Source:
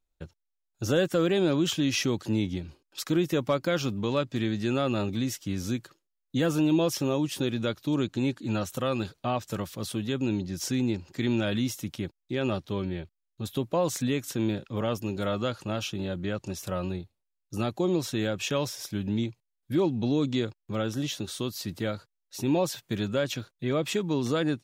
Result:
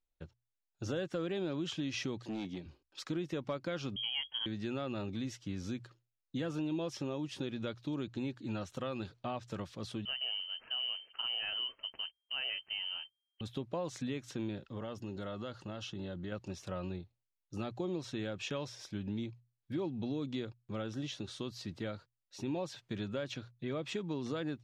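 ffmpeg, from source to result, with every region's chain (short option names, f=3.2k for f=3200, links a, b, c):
-filter_complex "[0:a]asettb=1/sr,asplit=3[a][b][c];[a]atrim=end=2.184[d];[b]atrim=start=2.18:end=2.66,asetpts=PTS-STARTPTS,afade=t=in:d=0.004:c=qsin,afade=t=out:st=0.476:d=0.004:c=qsin,highpass=170,bandreject=f=1.4k:w=5.8,volume=27.5dB,asoftclip=hard,volume=-27.5dB[e];[c]atrim=start=2.656[f];[d][e]acrossfade=d=0.004:c1=hsin:c2=qsin[g];[g][f]acrossfade=d=0.004:c1=qsin:c2=hsin,asettb=1/sr,asplit=3[h][i][j];[h]atrim=end=3.964[k];[i]atrim=start=3.96:end=4.46,asetpts=PTS-STARTPTS,afade=t=in:d=0.004:c=qsin,afade=t=out:st=0.496:d=0.004:c=qsin,aemphasis=mode=reproduction:type=75fm,acompressor=mode=upward:threshold=-36dB:ratio=2.5:attack=3.2:release=140:knee=2.83:detection=peak,lowpass=f=2.9k:t=q:w=0.5098,lowpass=f=2.9k:t=q:w=0.6013,lowpass=f=2.9k:t=q:w=0.9,lowpass=f=2.9k:t=q:w=2.563,afreqshift=-3400[l];[j]atrim=start=4.456[m];[k][l]acrossfade=d=0.004:c1=hsin:c2=qsin[n];[n][m]acrossfade=d=0.004:c1=qsin:c2=hsin,asettb=1/sr,asplit=3[o][p][q];[o]atrim=end=10.054[r];[p]atrim=start=10.05:end=13.41,asetpts=PTS-STARTPTS,afade=t=in:d=0.004:c=qsin,afade=t=out:st=3.356:d=0.004:c=qsin,acrusher=bits=5:mode=log:mix=0:aa=0.000001,lowpass=f=2.7k:t=q:w=0.5098,lowpass=f=2.7k:t=q:w=0.6013,lowpass=f=2.7k:t=q:w=0.9,lowpass=f=2.7k:t=q:w=2.563,afreqshift=-3200[s];[q]atrim=start=13.406[t];[r][s]acrossfade=d=0.004:c1=hsin:c2=qsin[u];[u][t]acrossfade=d=0.004:c1=qsin:c2=hsin,asettb=1/sr,asplit=3[v][w][x];[v]atrim=end=14.644[y];[w]atrim=start=14.64:end=16.32,asetpts=PTS-STARTPTS,afade=t=in:d=0.004:c=qsin,afade=t=out:st=1.676:d=0.004:c=qsin,asuperstop=centerf=2400:order=4:qfactor=7.5,acompressor=threshold=-31dB:ratio=2.5:attack=3.2:release=140:knee=1:detection=peak[z];[x]atrim=start=16.316[aa];[y][z]acrossfade=d=0.004:c1=hsin:c2=qsin[ab];[ab][aa]acrossfade=d=0.004:c1=qsin:c2=hsin,lowpass=5.2k,bandreject=f=60:t=h:w=6,bandreject=f=120:t=h:w=6,acompressor=threshold=-28dB:ratio=2.5,volume=-7dB"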